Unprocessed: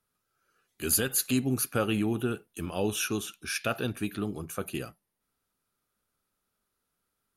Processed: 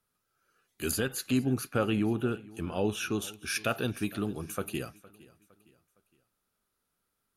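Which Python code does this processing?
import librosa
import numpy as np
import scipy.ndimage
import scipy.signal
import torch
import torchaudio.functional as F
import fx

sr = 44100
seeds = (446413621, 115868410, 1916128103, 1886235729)

y = fx.lowpass(x, sr, hz=2900.0, slope=6, at=(0.91, 3.22))
y = fx.echo_feedback(y, sr, ms=461, feedback_pct=42, wet_db=-21.5)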